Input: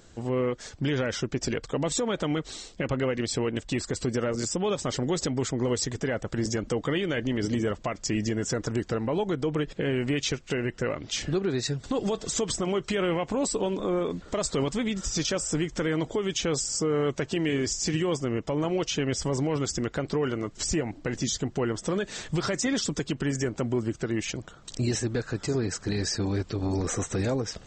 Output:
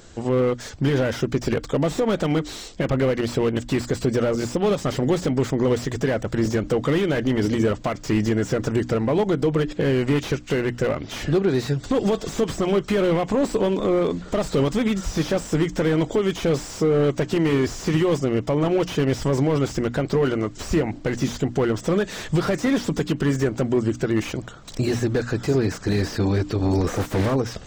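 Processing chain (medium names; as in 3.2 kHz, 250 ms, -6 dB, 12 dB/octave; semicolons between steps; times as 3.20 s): 26.96–27.36 s: self-modulated delay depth 0.43 ms; hum notches 60/120/180/240/300 Hz; slew-rate limiter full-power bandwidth 38 Hz; trim +7.5 dB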